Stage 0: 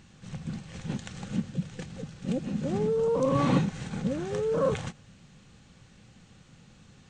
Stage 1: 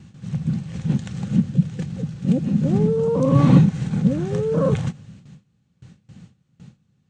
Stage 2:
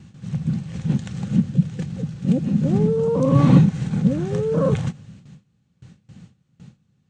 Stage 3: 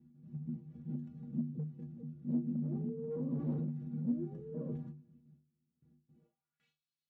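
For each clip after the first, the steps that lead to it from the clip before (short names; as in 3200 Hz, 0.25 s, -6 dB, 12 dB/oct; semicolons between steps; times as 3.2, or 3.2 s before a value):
HPF 55 Hz 12 dB/oct; gate with hold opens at -44 dBFS; bell 140 Hz +13 dB 2.1 oct; gain +1.5 dB
nothing audible
metallic resonator 71 Hz, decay 0.44 s, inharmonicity 0.03; hard clip -24 dBFS, distortion -10 dB; band-pass sweep 260 Hz -> 4100 Hz, 6.1–6.78; gain -1.5 dB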